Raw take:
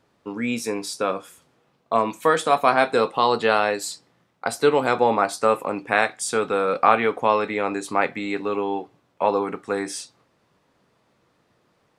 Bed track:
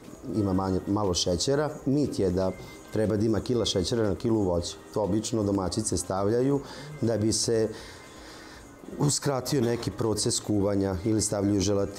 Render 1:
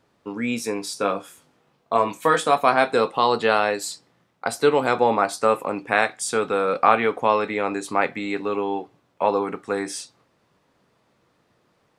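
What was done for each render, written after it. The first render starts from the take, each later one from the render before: 0.94–2.51 s: doubling 20 ms -6 dB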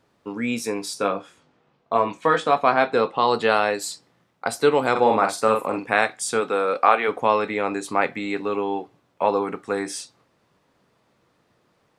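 1.08–3.28 s: distance through air 110 m; 4.91–5.88 s: doubling 46 ms -5.5 dB; 6.40–7.07 s: high-pass 190 Hz -> 400 Hz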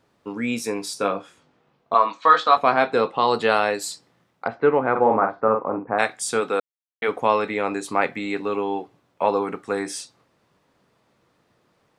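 1.94–2.57 s: cabinet simulation 350–6300 Hz, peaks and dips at 390 Hz -10 dB, 1.2 kHz +10 dB, 2.4 kHz -3 dB, 4.1 kHz +10 dB; 4.46–5.98 s: low-pass 2.3 kHz -> 1.2 kHz 24 dB/octave; 6.60–7.02 s: mute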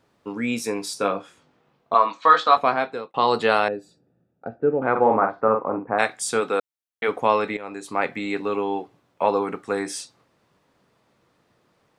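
2.56–3.14 s: fade out; 3.68–4.82 s: boxcar filter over 42 samples; 7.57–8.19 s: fade in, from -15 dB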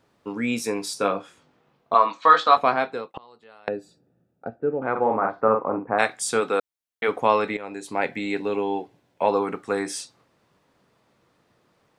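3.02–3.68 s: inverted gate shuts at -18 dBFS, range -31 dB; 4.50–5.25 s: gain -4 dB; 7.65–9.31 s: peaking EQ 1.2 kHz -12.5 dB 0.24 oct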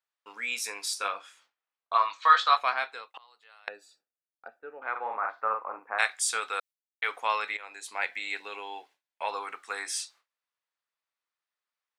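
high-pass 1.4 kHz 12 dB/octave; gate with hold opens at -52 dBFS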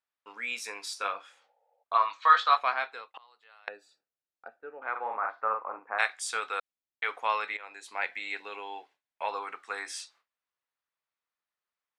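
low-pass 3.2 kHz 6 dB/octave; 1.32–1.81 s: spectral replace 440–910 Hz before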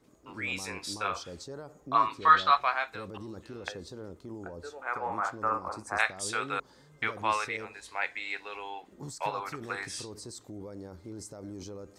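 add bed track -17.5 dB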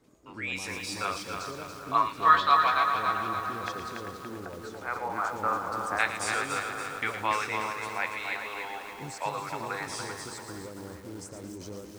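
two-band feedback delay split 1.9 kHz, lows 389 ms, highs 114 ms, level -8 dB; bit-crushed delay 284 ms, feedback 55%, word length 8-bit, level -5.5 dB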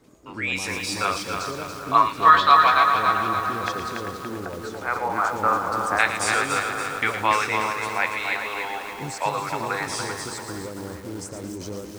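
trim +7.5 dB; peak limiter -3 dBFS, peak gain reduction 3 dB

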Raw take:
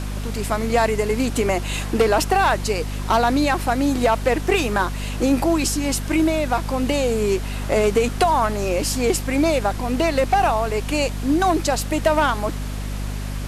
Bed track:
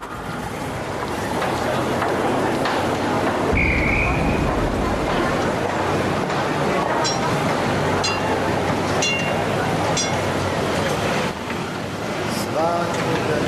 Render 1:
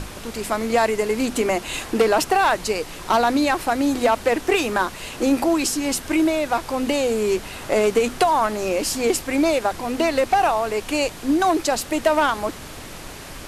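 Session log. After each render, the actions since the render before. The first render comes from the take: hum notches 50/100/150/200/250 Hz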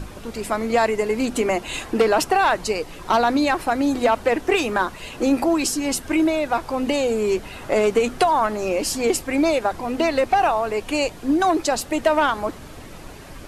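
noise reduction 8 dB, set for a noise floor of -37 dBFS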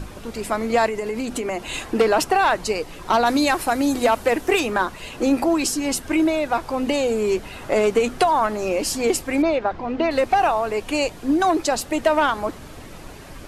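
0.87–1.77 s: compression, threshold -22 dBFS; 3.25–4.59 s: treble shelf 4.4 kHz -> 9.1 kHz +11 dB; 9.42–10.11 s: distance through air 210 m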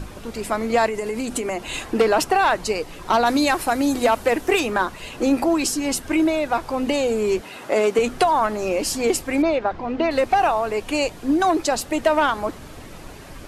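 0.94–1.54 s: peaking EQ 9.1 kHz +6 dB 0.82 oct; 7.41–7.99 s: high-pass 210 Hz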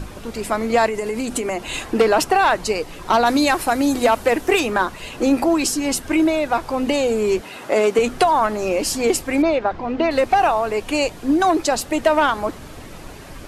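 trim +2 dB

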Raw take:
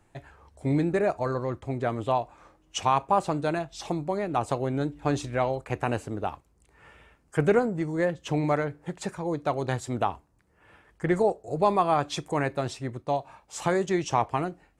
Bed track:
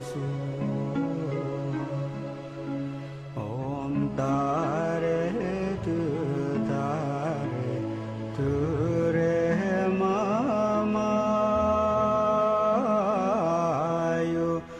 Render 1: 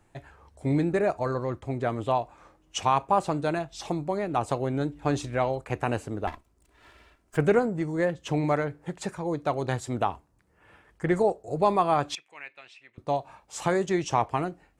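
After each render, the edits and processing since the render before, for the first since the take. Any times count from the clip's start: 6.27–7.37 s: comb filter that takes the minimum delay 3 ms; 12.15–12.98 s: band-pass filter 2.5 kHz, Q 4.1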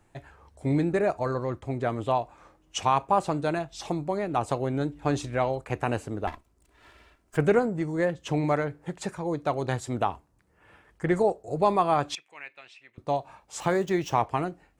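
13.60–14.22 s: median filter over 5 samples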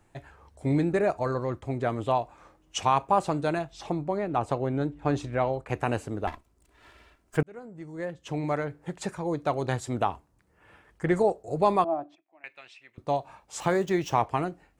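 3.72–5.69 s: treble shelf 4 kHz -10 dB; 7.43–9.04 s: fade in; 11.84–12.44 s: two resonant band-passes 460 Hz, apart 0.99 oct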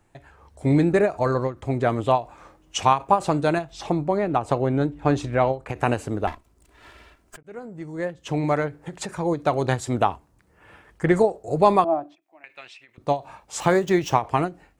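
level rider gain up to 6.5 dB; endings held to a fixed fall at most 250 dB/s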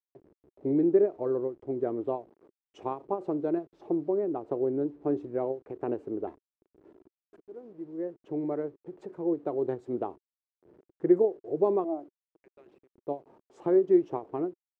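send-on-delta sampling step -40 dBFS; band-pass filter 370 Hz, Q 3.7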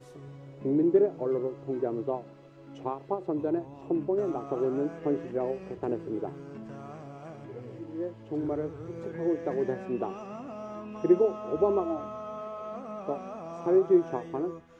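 add bed track -15 dB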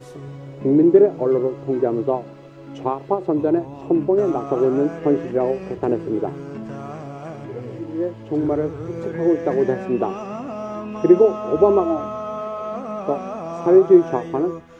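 trim +10.5 dB; peak limiter -2 dBFS, peak gain reduction 2 dB

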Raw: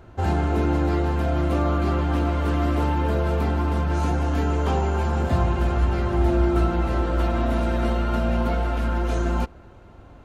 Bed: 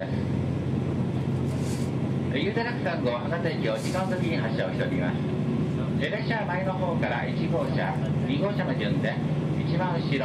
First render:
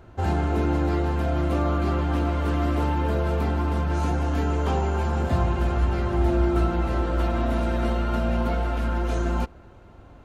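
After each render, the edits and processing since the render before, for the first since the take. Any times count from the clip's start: trim -1.5 dB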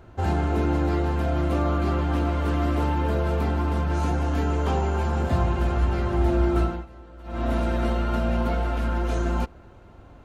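6.61–7.49 s: dip -20.5 dB, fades 0.25 s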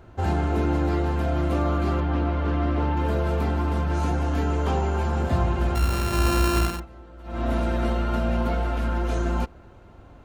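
2.00–2.97 s: distance through air 150 m; 5.75–6.80 s: sorted samples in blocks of 32 samples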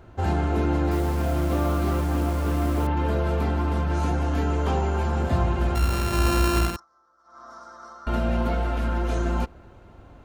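0.91–2.87 s: send-on-delta sampling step -35 dBFS; 6.76–8.07 s: two resonant band-passes 2.6 kHz, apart 2.2 oct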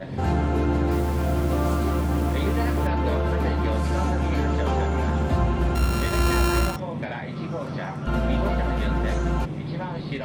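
add bed -4.5 dB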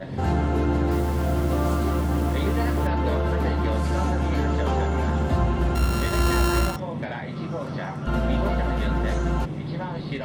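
band-stop 2.4 kHz, Q 19

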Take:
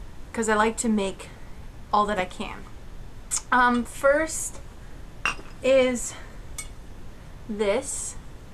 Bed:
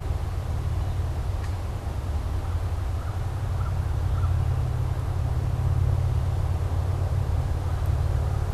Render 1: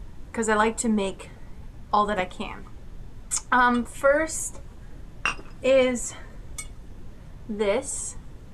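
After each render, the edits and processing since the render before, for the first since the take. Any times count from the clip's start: noise reduction 6 dB, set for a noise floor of -44 dBFS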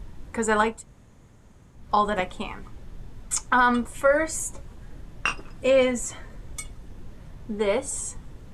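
0.73–1.79 s: room tone, crossfade 0.24 s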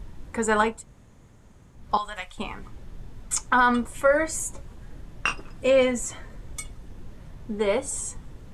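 1.97–2.38 s: amplifier tone stack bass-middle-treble 10-0-10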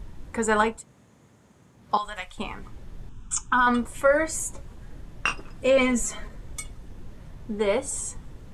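0.78–2.03 s: high-pass 130 Hz; 3.09–3.67 s: static phaser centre 3 kHz, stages 8; 5.77–6.28 s: comb 4.8 ms, depth 100%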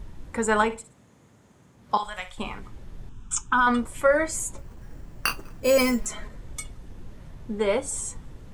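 0.64–2.60 s: flutter echo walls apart 10.3 m, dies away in 0.28 s; 4.58–6.06 s: careless resampling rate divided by 6×, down filtered, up hold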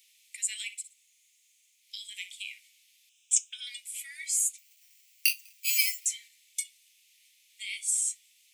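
steep high-pass 2.2 kHz 72 dB/octave; treble shelf 9.7 kHz +10.5 dB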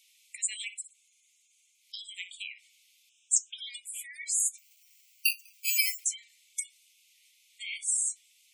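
spectral gate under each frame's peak -15 dB strong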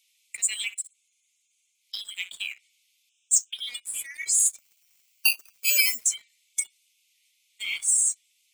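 waveshaping leveller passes 2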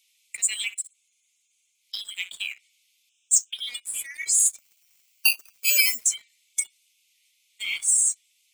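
trim +1.5 dB

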